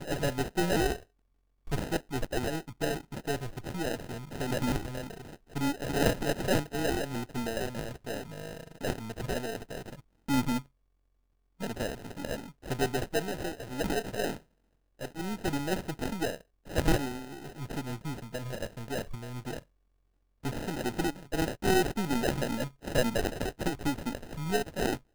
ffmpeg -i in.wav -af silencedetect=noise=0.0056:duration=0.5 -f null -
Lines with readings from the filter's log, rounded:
silence_start: 1.03
silence_end: 1.67 | silence_duration: 0.64
silence_start: 10.62
silence_end: 11.60 | silence_duration: 0.98
silence_start: 14.38
silence_end: 14.99 | silence_duration: 0.61
silence_start: 19.60
silence_end: 20.44 | silence_duration: 0.84